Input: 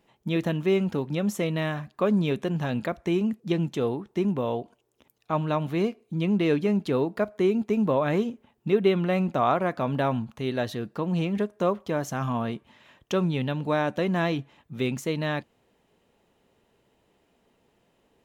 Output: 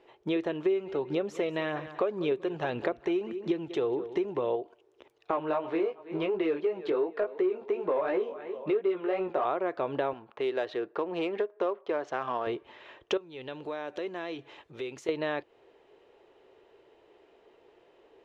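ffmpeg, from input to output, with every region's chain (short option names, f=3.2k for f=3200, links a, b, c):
-filter_complex "[0:a]asettb=1/sr,asplit=3[a][b][c];[a]atrim=end=0.664[d];[b]atrim=start=0.66:end=4.56,asetpts=PTS-STARTPTS,afade=t=in:d=0.004:c=qsin,afade=t=out:st=3.896:d=0.004:c=qsin,aecho=1:1:192|384|576:0.119|0.0428|0.0154,atrim=end_sample=171990,aphaser=in_gain=1:out_gain=1:delay=1.6:decay=0.3:speed=1.8:type=triangular[e];[c]atrim=start=4.556[f];[d][e]acrossfade=d=0.004:c1=hsin:c2=qsin[g];[g][f]acrossfade=d=0.004:c1=qsin:c2=hsin,asettb=1/sr,asplit=3[h][i][j];[h]atrim=end=5.314[k];[i]atrim=start=5.31:end=9.45,asetpts=PTS-STARTPTS,afade=t=in:d=0.004:c=qsin,afade=t=out:st=4.136:d=0.004:c=qsin,aecho=1:1:323|646|969:0.0841|0.0345|0.0141,atrim=end_sample=182574,flanger=delay=16:depth=3.7:speed=2.8,asplit=2[l][m];[m]highpass=f=720:p=1,volume=14dB,asoftclip=type=tanh:threshold=-13dB[n];[l][n]amix=inputs=2:normalize=0,lowpass=f=1.5k:p=1,volume=-6dB[o];[j]atrim=start=9.446[p];[k][o]acrossfade=d=0.004:c1=hsin:c2=qsin[q];[q][p]acrossfade=d=0.004:c1=qsin:c2=hsin,asettb=1/sr,asplit=3[r][s][t];[r]atrim=end=10.134[u];[s]atrim=start=10.13:end=12.47,asetpts=PTS-STARTPTS,afade=t=in:d=0.004:c=qsin,afade=t=out:st=2.336:d=0.004:c=qsin,highpass=f=460:p=1,adynamicsmooth=sensitivity=7:basefreq=2.5k[v];[t]atrim=start=12.466[w];[u][v]acrossfade=d=0.004:c1=hsin:c2=qsin[x];[x][w]acrossfade=d=0.004:c1=qsin:c2=hsin,asettb=1/sr,asplit=3[y][z][aa];[y]atrim=end=13.174[ab];[z]atrim=start=13.17:end=15.09,asetpts=PTS-STARTPTS,afade=t=in:d=0.004:c=qsin,afade=t=out:st=1.916:d=0.004:c=qsin,highshelf=f=3.1k:g=10,acompressor=threshold=-42dB:ratio=4:attack=3.2:release=140:knee=1:detection=peak[ac];[aa]atrim=start=15.086[ad];[ab][ac]acrossfade=d=0.004:c1=hsin:c2=qsin[ae];[ae][ad]acrossfade=d=0.004:c1=qsin:c2=hsin,lowpass=3.7k,lowshelf=f=280:t=q:w=3:g=-9.5,acompressor=threshold=-33dB:ratio=4,volume=5dB"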